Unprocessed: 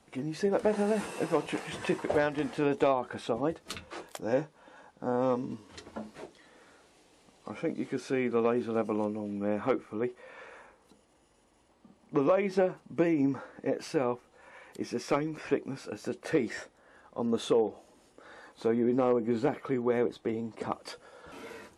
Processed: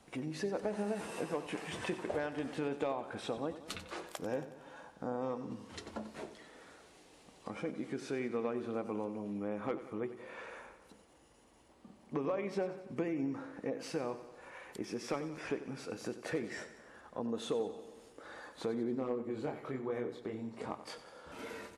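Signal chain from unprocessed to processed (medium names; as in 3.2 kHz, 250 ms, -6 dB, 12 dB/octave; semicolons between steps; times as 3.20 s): 18.95–21.39 s: chorus 1.1 Hz, depth 5.6 ms; compression 2:1, threshold -42 dBFS, peak gain reduction 12 dB; feedback delay 92 ms, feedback 60%, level -13 dB; trim +1 dB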